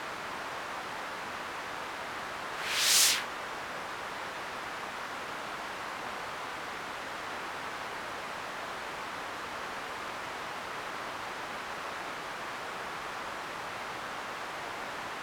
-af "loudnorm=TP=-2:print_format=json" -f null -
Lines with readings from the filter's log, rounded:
"input_i" : "-35.0",
"input_tp" : "-11.5",
"input_lra" : "8.2",
"input_thresh" : "-45.0",